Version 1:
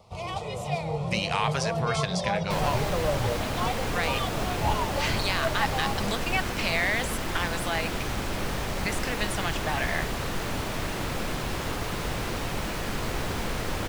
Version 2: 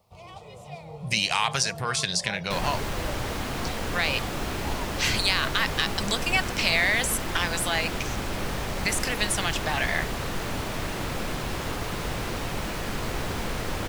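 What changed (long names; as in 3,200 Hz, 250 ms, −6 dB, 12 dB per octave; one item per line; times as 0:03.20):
speech: add high-shelf EQ 2,800 Hz +11 dB
first sound −11.0 dB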